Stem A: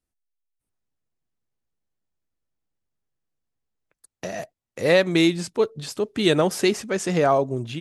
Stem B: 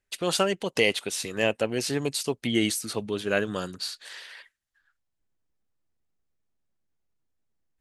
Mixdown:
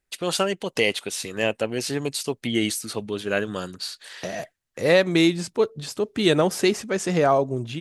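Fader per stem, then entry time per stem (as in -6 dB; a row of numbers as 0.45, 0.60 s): 0.0, +1.0 dB; 0.00, 0.00 s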